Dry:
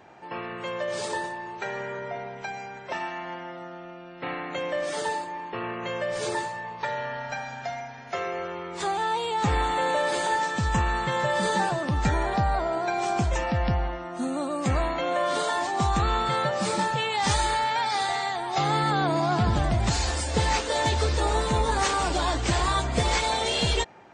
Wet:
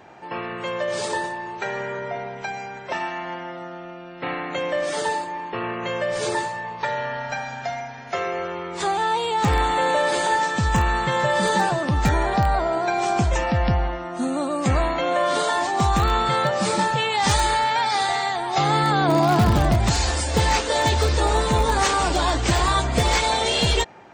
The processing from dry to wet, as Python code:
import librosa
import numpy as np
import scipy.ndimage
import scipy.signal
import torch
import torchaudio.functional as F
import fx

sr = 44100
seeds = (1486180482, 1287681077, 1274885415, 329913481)

p1 = fx.peak_eq(x, sr, hz=300.0, db=3.5, octaves=2.9, at=(19.08, 19.76))
p2 = (np.mod(10.0 ** (14.0 / 20.0) * p1 + 1.0, 2.0) - 1.0) / 10.0 ** (14.0 / 20.0)
p3 = p1 + (p2 * 10.0 ** (-11.5 / 20.0))
y = p3 * 10.0 ** (2.5 / 20.0)